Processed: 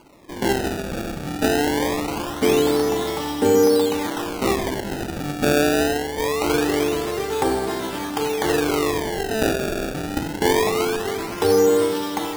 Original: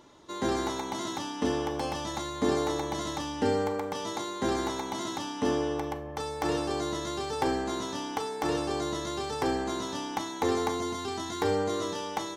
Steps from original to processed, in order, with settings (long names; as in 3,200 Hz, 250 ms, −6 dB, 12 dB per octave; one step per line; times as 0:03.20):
four-comb reverb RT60 2.6 s, combs from 30 ms, DRR 3 dB
dynamic equaliser 430 Hz, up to +5 dB, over −39 dBFS, Q 3.7
sample-and-hold swept by an LFO 24×, swing 160% 0.23 Hz
level +5.5 dB